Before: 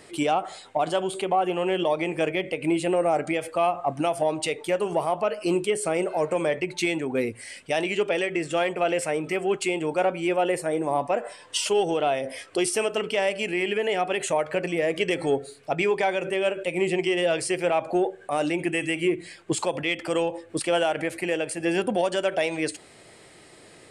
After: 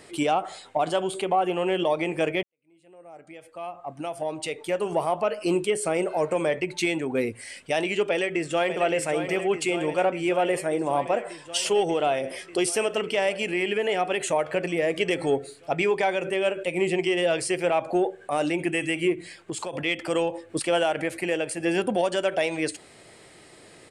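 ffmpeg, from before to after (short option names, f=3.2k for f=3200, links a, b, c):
-filter_complex "[0:a]asplit=2[a][b];[b]afade=t=in:st=8.1:d=0.01,afade=t=out:st=8.81:d=0.01,aecho=0:1:590|1180|1770|2360|2950|3540|4130|4720|5310|5900|6490|7080:0.375837|0.30067|0.240536|0.192429|0.153943|0.123154|0.0985235|0.0788188|0.0630551|0.050444|0.0403552|0.0322842[c];[a][c]amix=inputs=2:normalize=0,asettb=1/sr,asplit=3[d][e][f];[d]atrim=end=19.124[g];[e]atrim=start=19.12:end=19.73,asetpts=PTS-STARTPTS,afade=t=in:d=0.004:c=qsin,afade=t=out:st=0.606:d=0.004:c=qsin,acompressor=threshold=-28dB:ratio=6:attack=3.2:release=140:knee=1:detection=peak[h];[f]atrim=start=19.726[i];[g][h]acrossfade=d=0.004:c1=hsin:c2=qsin[j];[j][i]acrossfade=d=0.004:c1=qsin:c2=hsin,asplit=2[k][l];[k]atrim=end=2.43,asetpts=PTS-STARTPTS,afade=t=out:st=2.426:d=0.004:c=hsin[m];[l]atrim=start=2.43,asetpts=PTS-STARTPTS,afade=t=in:d=2.57:c=qua[n];[m][n]concat=n=2:v=0:a=1"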